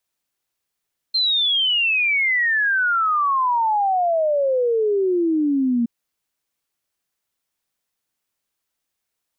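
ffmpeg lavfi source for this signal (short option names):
-f lavfi -i "aevalsrc='0.158*clip(min(t,4.72-t)/0.01,0,1)*sin(2*PI*4200*4.72/log(230/4200)*(exp(log(230/4200)*t/4.72)-1))':d=4.72:s=44100"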